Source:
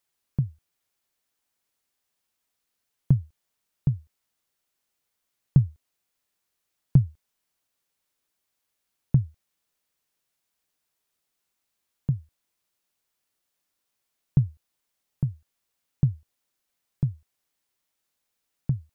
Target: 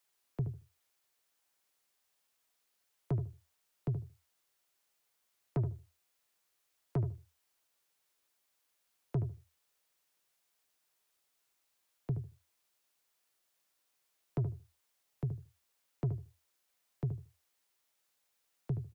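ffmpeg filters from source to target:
ffmpeg -i in.wav -filter_complex "[0:a]acrossover=split=130|240|350[link_01][link_02][link_03][link_04];[link_04]acontrast=85[link_05];[link_01][link_02][link_03][link_05]amix=inputs=4:normalize=0,asoftclip=type=tanh:threshold=-21.5dB,asplit=2[link_06][link_07];[link_07]adelay=75,lowpass=frequency=840:poles=1,volume=-7.5dB,asplit=2[link_08][link_09];[link_09]adelay=75,lowpass=frequency=840:poles=1,volume=0.19,asplit=2[link_10][link_11];[link_11]adelay=75,lowpass=frequency=840:poles=1,volume=0.19[link_12];[link_06][link_08][link_10][link_12]amix=inputs=4:normalize=0,volume=-6dB" out.wav

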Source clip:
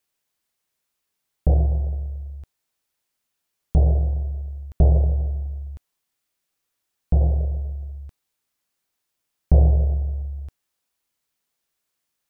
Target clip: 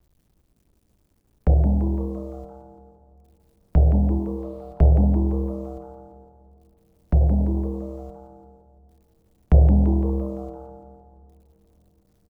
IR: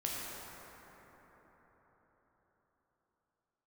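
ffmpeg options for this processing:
-filter_complex "[0:a]agate=range=-10dB:threshold=-28dB:ratio=16:detection=peak,asplit=3[link_01][link_02][link_03];[link_01]afade=type=out:start_time=4.17:duration=0.02[link_04];[link_02]lowshelf=frequency=240:gain=-9.5,afade=type=in:start_time=4.17:duration=0.02,afade=type=out:start_time=4.79:duration=0.02[link_05];[link_03]afade=type=in:start_time=4.79:duration=0.02[link_06];[link_04][link_05][link_06]amix=inputs=3:normalize=0,acrossover=split=100|350[link_07][link_08][link_09];[link_07]acompressor=mode=upward:threshold=-31dB:ratio=2.5[link_10];[link_10][link_08][link_09]amix=inputs=3:normalize=0,acrusher=bits=10:mix=0:aa=0.000001,asplit=7[link_11][link_12][link_13][link_14][link_15][link_16][link_17];[link_12]adelay=170,afreqshift=130,volume=-10dB[link_18];[link_13]adelay=340,afreqshift=260,volume=-15.8dB[link_19];[link_14]adelay=510,afreqshift=390,volume=-21.7dB[link_20];[link_15]adelay=680,afreqshift=520,volume=-27.5dB[link_21];[link_16]adelay=850,afreqshift=650,volume=-33.4dB[link_22];[link_17]adelay=1020,afreqshift=780,volume=-39.2dB[link_23];[link_11][link_18][link_19][link_20][link_21][link_22][link_23]amix=inputs=7:normalize=0,asplit=2[link_24][link_25];[1:a]atrim=start_sample=2205[link_26];[link_25][link_26]afir=irnorm=-1:irlink=0,volume=-23.5dB[link_27];[link_24][link_27]amix=inputs=2:normalize=0"

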